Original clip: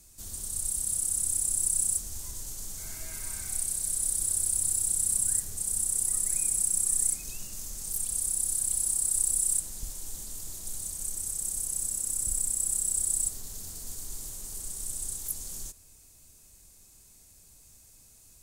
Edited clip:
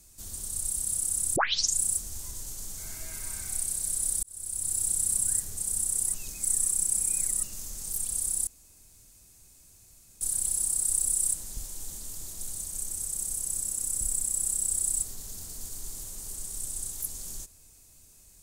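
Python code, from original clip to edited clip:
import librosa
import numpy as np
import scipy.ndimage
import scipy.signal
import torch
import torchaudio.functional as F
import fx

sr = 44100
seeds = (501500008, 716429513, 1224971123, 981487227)

y = fx.edit(x, sr, fx.tape_start(start_s=1.36, length_s=0.43),
    fx.fade_in_span(start_s=4.23, length_s=0.6),
    fx.reverse_span(start_s=6.14, length_s=1.29),
    fx.insert_room_tone(at_s=8.47, length_s=1.74), tone=tone)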